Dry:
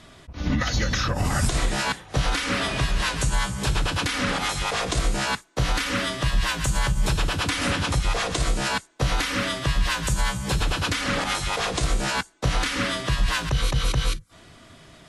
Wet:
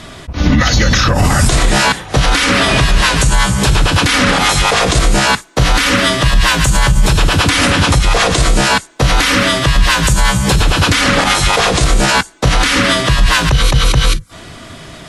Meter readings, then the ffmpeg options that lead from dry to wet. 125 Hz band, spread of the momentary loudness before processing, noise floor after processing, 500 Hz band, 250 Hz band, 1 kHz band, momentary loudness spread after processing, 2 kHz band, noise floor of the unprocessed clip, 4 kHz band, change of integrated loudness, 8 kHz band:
+12.5 dB, 2 LU, -34 dBFS, +13.5 dB, +13.5 dB, +13.5 dB, 3 LU, +13.5 dB, -50 dBFS, +13.5 dB, +13.0 dB, +13.5 dB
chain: -af "alimiter=level_in=17dB:limit=-1dB:release=50:level=0:latency=1,volume=-1dB"

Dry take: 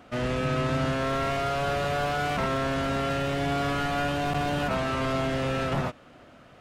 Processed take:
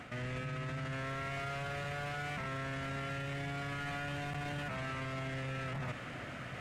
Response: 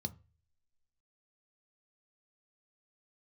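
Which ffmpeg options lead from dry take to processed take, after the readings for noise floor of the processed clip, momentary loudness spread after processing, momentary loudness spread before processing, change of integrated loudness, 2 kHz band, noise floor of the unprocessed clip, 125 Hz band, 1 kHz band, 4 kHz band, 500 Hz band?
-45 dBFS, 2 LU, 1 LU, -12.0 dB, -8.0 dB, -52 dBFS, -9.0 dB, -13.5 dB, -12.0 dB, -15.5 dB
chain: -af "equalizer=f=125:t=o:w=1:g=10,equalizer=f=2k:t=o:w=1:g=11,equalizer=f=8k:t=o:w=1:g=6,acontrast=79,alimiter=limit=-20.5dB:level=0:latency=1,areverse,acompressor=threshold=-36dB:ratio=4,areverse,volume=-3dB"

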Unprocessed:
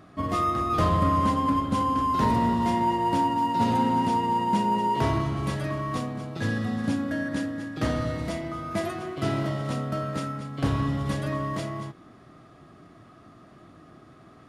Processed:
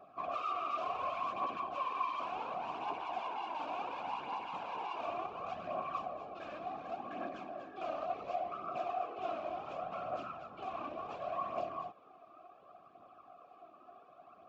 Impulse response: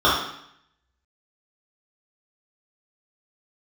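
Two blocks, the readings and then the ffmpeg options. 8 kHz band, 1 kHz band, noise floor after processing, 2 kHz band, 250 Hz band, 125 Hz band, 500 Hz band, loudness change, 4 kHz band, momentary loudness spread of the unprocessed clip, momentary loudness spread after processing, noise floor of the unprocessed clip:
under -25 dB, -11.5 dB, -60 dBFS, -12.5 dB, -25.5 dB, -32.5 dB, -9.5 dB, -13.5 dB, -13.5 dB, 9 LU, 21 LU, -52 dBFS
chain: -filter_complex "[0:a]aresample=16000,asoftclip=type=hard:threshold=-30.5dB,aresample=44100,afftfilt=real='hypot(re,im)*cos(2*PI*random(0))':imag='hypot(re,im)*sin(2*PI*random(1))':win_size=512:overlap=0.75,aphaser=in_gain=1:out_gain=1:delay=3.5:decay=0.41:speed=0.69:type=triangular,asplit=3[a][b][c];[a]bandpass=f=730:t=q:w=8,volume=0dB[d];[b]bandpass=f=1.09k:t=q:w=8,volume=-6dB[e];[c]bandpass=f=2.44k:t=q:w=8,volume=-9dB[f];[d][e][f]amix=inputs=3:normalize=0,volume=10dB"

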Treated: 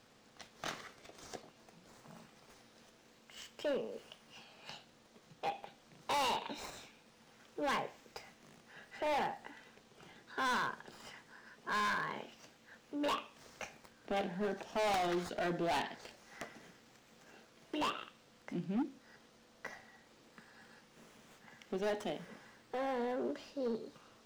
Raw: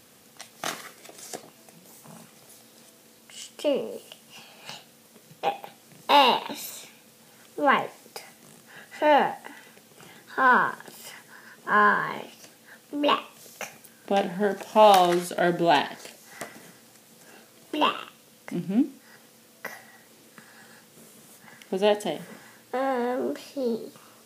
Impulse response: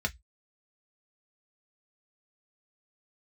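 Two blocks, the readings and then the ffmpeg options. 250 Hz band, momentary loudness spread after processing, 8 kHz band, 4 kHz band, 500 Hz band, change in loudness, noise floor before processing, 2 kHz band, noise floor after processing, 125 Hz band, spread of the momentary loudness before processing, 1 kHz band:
-12.0 dB, 22 LU, -11.5 dB, -13.0 dB, -13.5 dB, -14.5 dB, -55 dBFS, -13.5 dB, -65 dBFS, -10.5 dB, 22 LU, -15.0 dB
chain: -filter_complex "[0:a]acrossover=split=120|7000[a][b][c];[b]asoftclip=type=hard:threshold=-22.5dB[d];[c]acrusher=samples=13:mix=1:aa=0.000001:lfo=1:lforange=7.8:lforate=0.22[e];[a][d][e]amix=inputs=3:normalize=0,volume=-9dB"

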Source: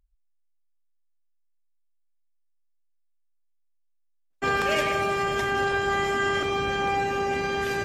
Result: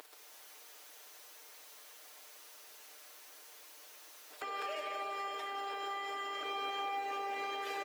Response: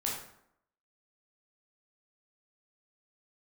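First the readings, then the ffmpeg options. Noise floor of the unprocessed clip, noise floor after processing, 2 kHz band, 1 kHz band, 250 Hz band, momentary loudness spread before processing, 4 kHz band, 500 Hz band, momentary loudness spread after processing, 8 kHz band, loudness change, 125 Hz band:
-69 dBFS, -56 dBFS, -17.0 dB, -11.0 dB, -21.5 dB, 3 LU, -10.5 dB, -17.5 dB, 15 LU, -10.0 dB, -14.0 dB, under -40 dB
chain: -af "bandreject=f=6.1k:w=11,acrusher=bits=7:mode=log:mix=0:aa=0.000001,highpass=f=390:w=0.5412,highpass=f=390:w=1.3066,equalizer=f=7.6k:t=o:w=0.77:g=-2.5,acompressor=threshold=-40dB:ratio=12,aecho=1:1:6.6:0.82,acompressor=mode=upward:threshold=-39dB:ratio=2.5,alimiter=level_in=15dB:limit=-24dB:level=0:latency=1:release=442,volume=-15dB,highshelf=f=9.7k:g=-3.5,volume=8.5dB"

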